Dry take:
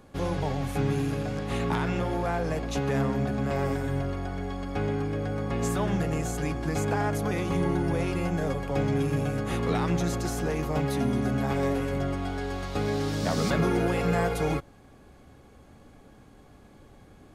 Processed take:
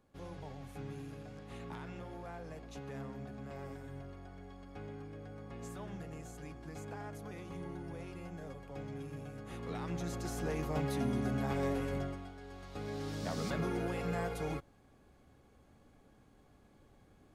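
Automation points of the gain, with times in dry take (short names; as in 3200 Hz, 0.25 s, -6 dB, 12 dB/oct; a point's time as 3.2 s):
9.34 s -18 dB
10.51 s -7.5 dB
11.97 s -7.5 dB
12.35 s -19 dB
13.11 s -11 dB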